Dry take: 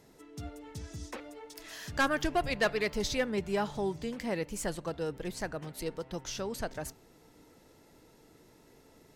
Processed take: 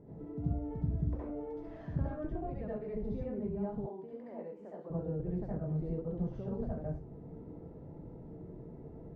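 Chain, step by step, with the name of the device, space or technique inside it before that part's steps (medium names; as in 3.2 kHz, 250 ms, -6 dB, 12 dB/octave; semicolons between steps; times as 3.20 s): television next door (compression 6:1, threshold -45 dBFS, peak gain reduction 19.5 dB; low-pass 410 Hz 12 dB/octave; reverberation RT60 0.35 s, pre-delay 64 ms, DRR -6.5 dB); 3.86–4.90 s: high-pass 490 Hz 12 dB/octave; trim +7.5 dB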